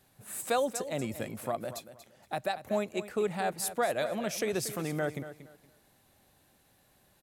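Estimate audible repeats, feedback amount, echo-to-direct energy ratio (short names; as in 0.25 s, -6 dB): 2, 24%, -12.5 dB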